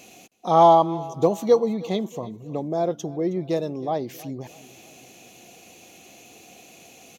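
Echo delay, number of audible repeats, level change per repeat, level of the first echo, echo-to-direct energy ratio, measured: 0.317 s, 3, -6.5 dB, -20.0 dB, -19.0 dB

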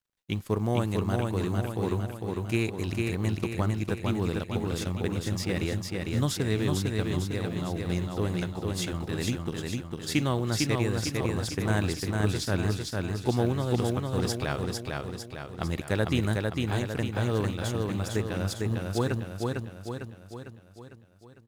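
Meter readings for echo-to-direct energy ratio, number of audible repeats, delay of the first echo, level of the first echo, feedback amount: -1.5 dB, 6, 0.452 s, -3.0 dB, 53%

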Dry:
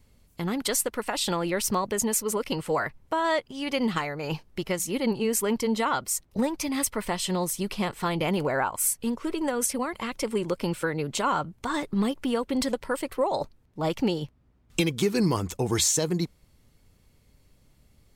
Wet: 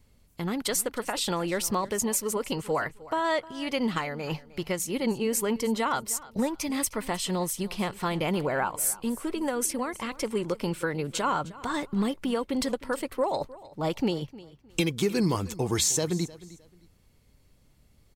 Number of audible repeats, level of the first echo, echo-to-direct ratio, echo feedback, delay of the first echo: 2, -19.0 dB, -18.5 dB, 25%, 0.308 s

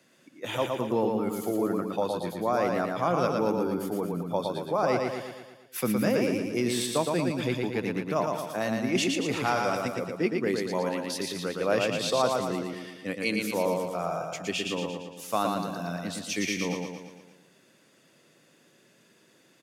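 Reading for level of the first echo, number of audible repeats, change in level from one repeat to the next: -3.5 dB, 6, -5.5 dB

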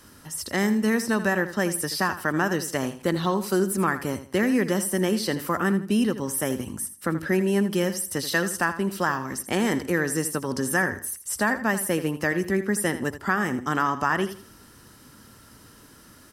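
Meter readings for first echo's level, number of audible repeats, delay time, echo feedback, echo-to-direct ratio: -12.5 dB, 3, 81 ms, 28%, -12.0 dB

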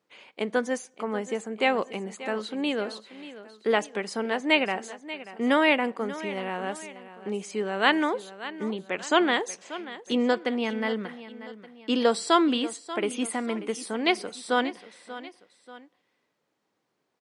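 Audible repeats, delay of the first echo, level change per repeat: 2, 0.586 s, -7.0 dB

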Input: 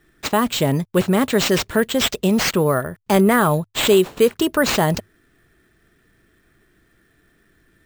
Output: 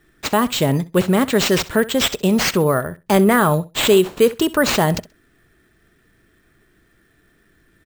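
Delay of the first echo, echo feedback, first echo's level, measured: 65 ms, 16%, -18.5 dB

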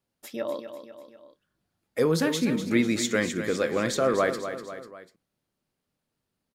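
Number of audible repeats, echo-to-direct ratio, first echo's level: 3, -8.5 dB, -10.0 dB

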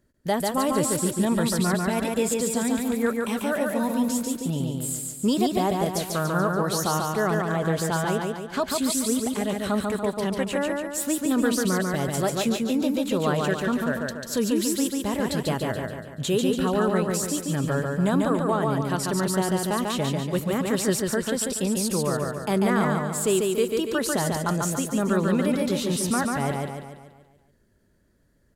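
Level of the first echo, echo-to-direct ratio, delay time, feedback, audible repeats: -3.0 dB, -1.5 dB, 0.143 s, 50%, 6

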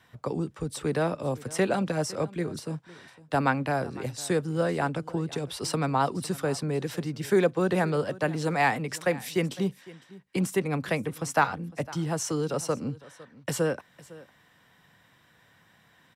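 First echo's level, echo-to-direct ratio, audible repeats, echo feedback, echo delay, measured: -20.0 dB, -20.0 dB, 1, no steady repeat, 0.506 s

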